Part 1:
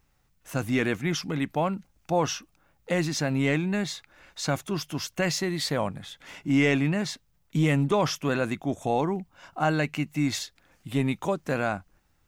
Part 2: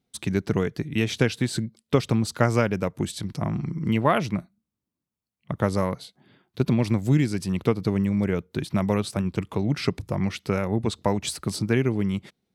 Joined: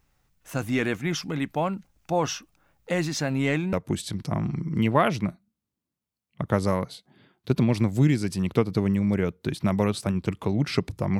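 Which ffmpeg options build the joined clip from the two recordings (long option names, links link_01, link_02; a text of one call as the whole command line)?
ffmpeg -i cue0.wav -i cue1.wav -filter_complex "[0:a]apad=whole_dur=11.19,atrim=end=11.19,atrim=end=3.732[link_01];[1:a]atrim=start=2.828:end=10.29[link_02];[link_01][link_02]acrossfade=duration=0.004:curve1=hsin:curve2=hsin" out.wav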